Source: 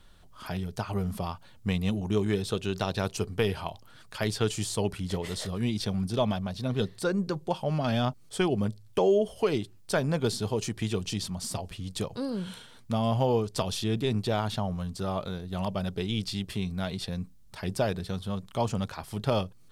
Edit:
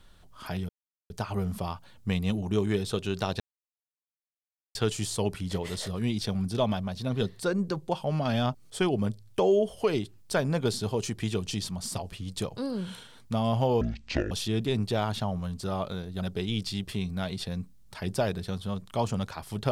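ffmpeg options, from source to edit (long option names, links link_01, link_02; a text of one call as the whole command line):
ffmpeg -i in.wav -filter_complex "[0:a]asplit=7[link_01][link_02][link_03][link_04][link_05][link_06][link_07];[link_01]atrim=end=0.69,asetpts=PTS-STARTPTS,afade=type=out:start_time=0.686:duration=0.004:curve=hsin,apad=pad_dur=0.41[link_08];[link_02]atrim=start=0.69:end=2.99,asetpts=PTS-STARTPTS,afade=type=in:duration=0.004:curve=hsin,afade=type=out:start_time=2.296:duration=0.004:curve=hsin[link_09];[link_03]atrim=start=2.99:end=4.34,asetpts=PTS-STARTPTS,volume=0[link_10];[link_04]atrim=start=4.34:end=13.404,asetpts=PTS-STARTPTS,afade=type=in:duration=0.004:curve=hsin[link_11];[link_05]atrim=start=13.4:end=13.67,asetpts=PTS-STARTPTS,asetrate=23814,aresample=44100[link_12];[link_06]atrim=start=13.666:end=15.572[link_13];[link_07]atrim=start=15.818[link_14];[link_08][link_09][link_10][link_11]concat=n=4:v=0:a=1[link_15];[link_15][link_12]acrossfade=duration=0.004:curve1=hsin:curve2=hsin[link_16];[link_16][link_13]acrossfade=duration=0.004:curve1=hsin:curve2=hsin[link_17];[link_17][link_14]acrossfade=duration=0.004:curve1=hsin:curve2=hsin" out.wav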